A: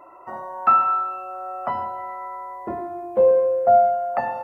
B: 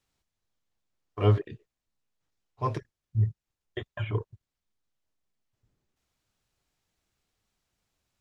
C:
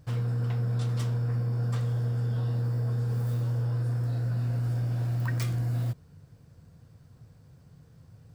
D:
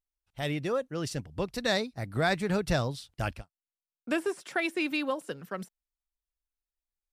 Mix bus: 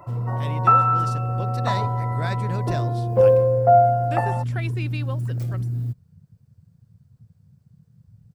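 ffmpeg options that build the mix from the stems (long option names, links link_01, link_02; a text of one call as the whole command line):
ffmpeg -i stem1.wav -i stem2.wav -i stem3.wav -i stem4.wav -filter_complex "[0:a]volume=0.5dB[link_01];[1:a]adelay=550,volume=-15.5dB[link_02];[2:a]afwtdn=0.0178,crystalizer=i=1:c=0,volume=2.5dB[link_03];[3:a]volume=-4.5dB[link_04];[link_01][link_02][link_03][link_04]amix=inputs=4:normalize=0" out.wav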